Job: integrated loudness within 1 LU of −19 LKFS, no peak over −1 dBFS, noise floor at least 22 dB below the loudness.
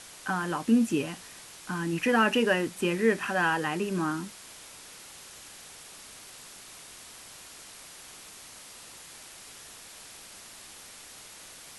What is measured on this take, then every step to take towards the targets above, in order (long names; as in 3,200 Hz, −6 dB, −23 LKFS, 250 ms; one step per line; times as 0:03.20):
background noise floor −48 dBFS; target noise floor −50 dBFS; integrated loudness −27.5 LKFS; sample peak −11.5 dBFS; target loudness −19.0 LKFS
→ noise reduction from a noise print 6 dB
level +8.5 dB